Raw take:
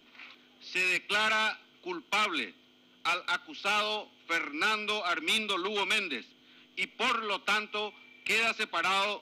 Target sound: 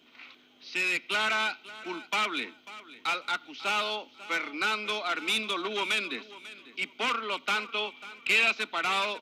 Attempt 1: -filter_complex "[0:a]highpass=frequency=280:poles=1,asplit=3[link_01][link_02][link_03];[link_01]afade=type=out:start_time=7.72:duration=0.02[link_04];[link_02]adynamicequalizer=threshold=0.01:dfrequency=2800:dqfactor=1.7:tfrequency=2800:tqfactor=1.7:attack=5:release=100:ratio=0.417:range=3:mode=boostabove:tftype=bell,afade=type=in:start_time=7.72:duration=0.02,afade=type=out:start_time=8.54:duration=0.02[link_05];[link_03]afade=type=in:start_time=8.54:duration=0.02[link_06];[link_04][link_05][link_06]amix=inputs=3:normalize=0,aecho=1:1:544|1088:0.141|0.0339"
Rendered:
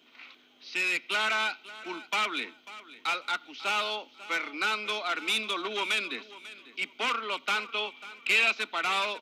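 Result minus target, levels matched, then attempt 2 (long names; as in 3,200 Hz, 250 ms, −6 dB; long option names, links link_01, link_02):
125 Hz band −4.0 dB
-filter_complex "[0:a]highpass=frequency=88:poles=1,asplit=3[link_01][link_02][link_03];[link_01]afade=type=out:start_time=7.72:duration=0.02[link_04];[link_02]adynamicequalizer=threshold=0.01:dfrequency=2800:dqfactor=1.7:tfrequency=2800:tqfactor=1.7:attack=5:release=100:ratio=0.417:range=3:mode=boostabove:tftype=bell,afade=type=in:start_time=7.72:duration=0.02,afade=type=out:start_time=8.54:duration=0.02[link_05];[link_03]afade=type=in:start_time=8.54:duration=0.02[link_06];[link_04][link_05][link_06]amix=inputs=3:normalize=0,aecho=1:1:544|1088:0.141|0.0339"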